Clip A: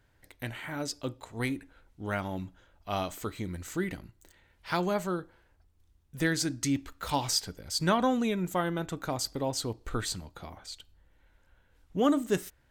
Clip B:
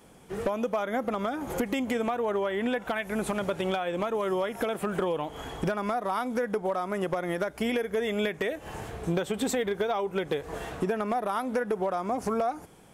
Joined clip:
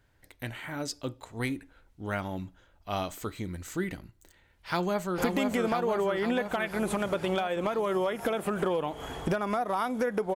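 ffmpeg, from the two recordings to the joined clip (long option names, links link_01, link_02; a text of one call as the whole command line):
ffmpeg -i cue0.wav -i cue1.wav -filter_complex "[0:a]apad=whole_dur=10.35,atrim=end=10.35,atrim=end=5.182[link_01];[1:a]atrim=start=1.538:end=6.71[link_02];[link_01][link_02]acrossfade=duration=0.004:curve1=hsin:curve2=hsin,asplit=2[link_03][link_04];[link_04]afade=type=in:start_time=4.51:duration=0.01,afade=type=out:start_time=5.18:duration=0.01,aecho=0:1:500|1000|1500|2000|2500|3000|3500|4000|4500|5000|5500|6000:0.630957|0.44167|0.309169|0.216418|0.151493|0.106045|0.0742315|0.0519621|0.0363734|0.0254614|0.017823|0.0124761[link_05];[link_03][link_05]amix=inputs=2:normalize=0" out.wav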